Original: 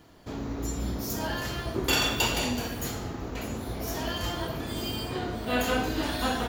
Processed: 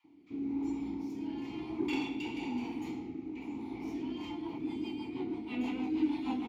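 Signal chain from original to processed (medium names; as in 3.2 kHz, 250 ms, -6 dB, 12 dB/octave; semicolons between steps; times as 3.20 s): vowel filter u; bands offset in time highs, lows 40 ms, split 1.1 kHz; in parallel at -6 dB: saturation -38.5 dBFS, distortion -11 dB; on the sum: rotary cabinet horn 1 Hz, later 6.3 Hz, at 3.84 s; trim +4.5 dB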